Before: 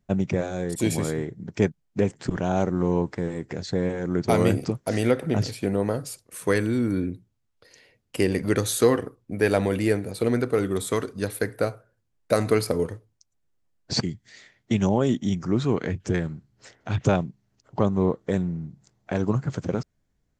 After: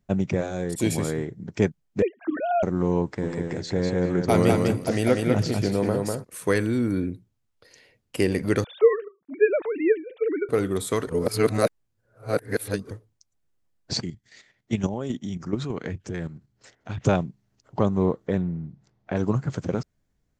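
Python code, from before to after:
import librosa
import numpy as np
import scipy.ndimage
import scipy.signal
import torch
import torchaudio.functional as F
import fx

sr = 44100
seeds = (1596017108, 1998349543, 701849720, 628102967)

y = fx.sine_speech(x, sr, at=(2.02, 2.63))
y = fx.echo_feedback(y, sr, ms=197, feedback_pct=15, wet_db=-3.0, at=(3.22, 6.23), fade=0.02)
y = fx.sine_speech(y, sr, at=(8.64, 10.49))
y = fx.level_steps(y, sr, step_db=10, at=(13.97, 17.02))
y = fx.air_absorb(y, sr, metres=150.0, at=(18.27, 19.17))
y = fx.edit(y, sr, fx.reverse_span(start_s=11.07, length_s=1.84), tone=tone)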